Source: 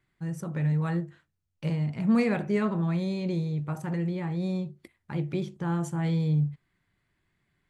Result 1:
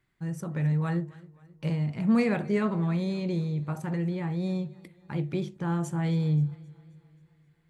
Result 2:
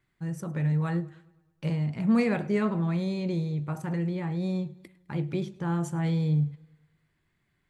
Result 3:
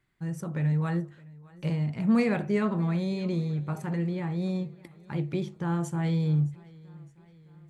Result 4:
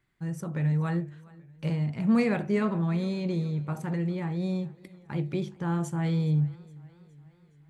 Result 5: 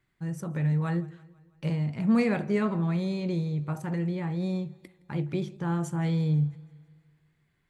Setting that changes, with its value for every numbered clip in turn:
warbling echo, time: 0.265, 0.104, 0.614, 0.417, 0.165 s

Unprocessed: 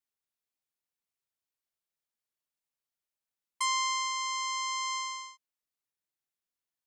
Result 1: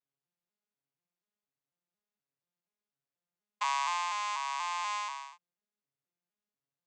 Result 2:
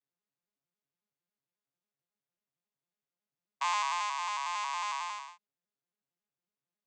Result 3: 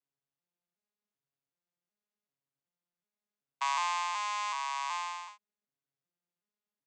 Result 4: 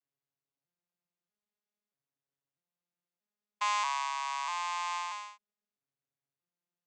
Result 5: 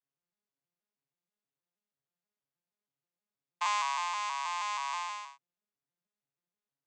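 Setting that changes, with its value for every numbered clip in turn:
arpeggiated vocoder, a note every: 242, 91, 377, 639, 159 ms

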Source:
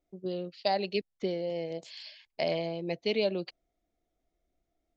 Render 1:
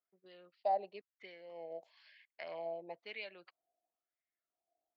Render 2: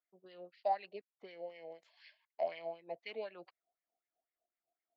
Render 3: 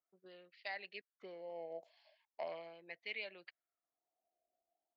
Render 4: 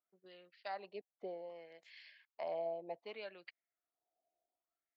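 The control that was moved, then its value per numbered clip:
wah, rate: 1, 4, 0.39, 0.64 Hz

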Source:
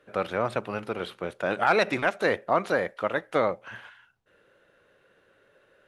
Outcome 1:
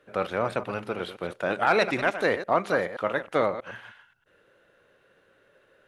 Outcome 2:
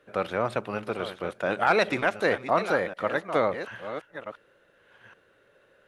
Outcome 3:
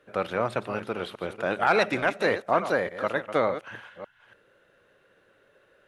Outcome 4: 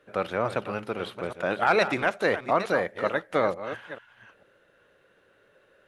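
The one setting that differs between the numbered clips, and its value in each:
reverse delay, time: 0.106, 0.734, 0.289, 0.443 s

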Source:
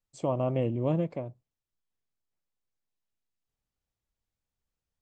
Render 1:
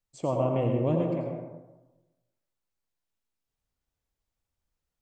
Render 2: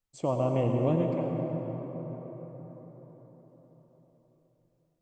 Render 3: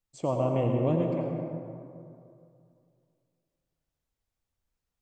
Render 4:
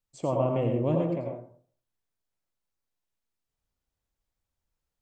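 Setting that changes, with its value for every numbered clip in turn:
plate-style reverb, RT60: 1.1, 5.2, 2.5, 0.5 s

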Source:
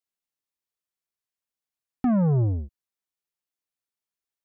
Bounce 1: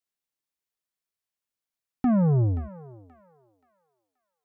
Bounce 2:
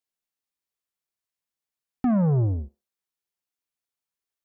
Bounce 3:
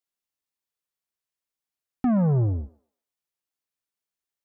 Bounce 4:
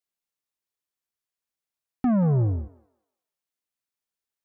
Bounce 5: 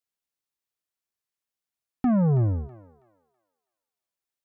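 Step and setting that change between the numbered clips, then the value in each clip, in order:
thinning echo, time: 528, 62, 124, 182, 325 ms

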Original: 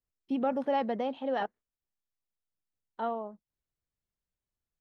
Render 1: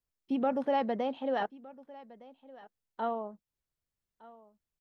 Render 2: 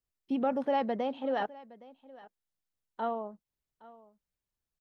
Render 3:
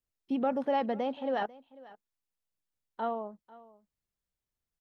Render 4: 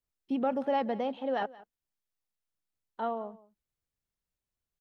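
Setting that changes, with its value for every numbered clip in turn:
echo, time: 1.212, 0.816, 0.494, 0.178 s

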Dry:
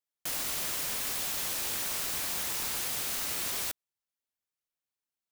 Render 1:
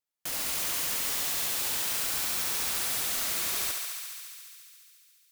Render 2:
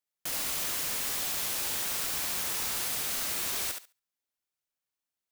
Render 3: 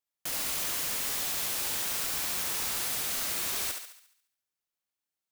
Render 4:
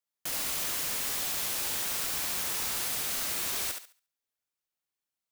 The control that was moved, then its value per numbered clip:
thinning echo, feedback: 85, 17, 51, 27%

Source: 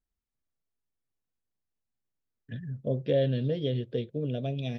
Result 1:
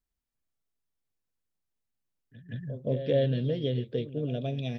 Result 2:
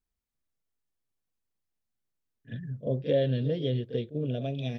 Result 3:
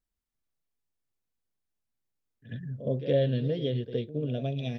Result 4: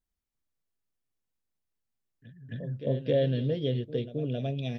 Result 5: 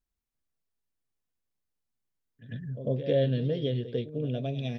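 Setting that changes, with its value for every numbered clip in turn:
pre-echo, time: 172, 40, 66, 267, 98 ms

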